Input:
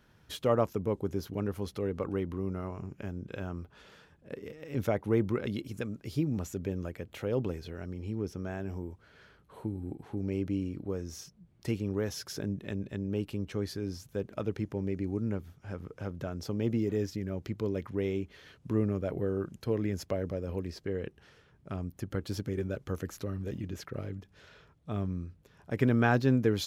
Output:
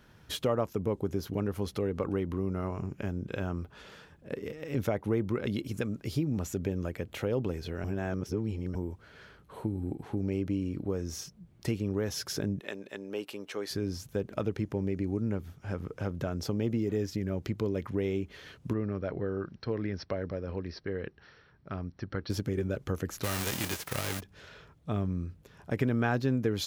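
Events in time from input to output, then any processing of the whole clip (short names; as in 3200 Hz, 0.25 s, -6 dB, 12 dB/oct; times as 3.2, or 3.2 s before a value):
7.84–8.75 reverse
12.6–13.71 HPF 500 Hz
18.73–22.3 rippled Chebyshev low-pass 5800 Hz, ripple 6 dB
23.23–24.19 spectral whitening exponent 0.3
whole clip: compressor 2.5:1, threshold -33 dBFS; gain +5 dB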